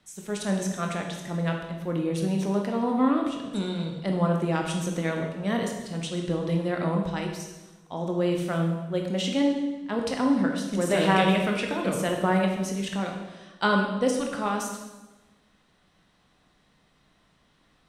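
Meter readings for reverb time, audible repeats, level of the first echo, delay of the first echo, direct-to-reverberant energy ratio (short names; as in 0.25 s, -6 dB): 1.2 s, none, none, none, 1.5 dB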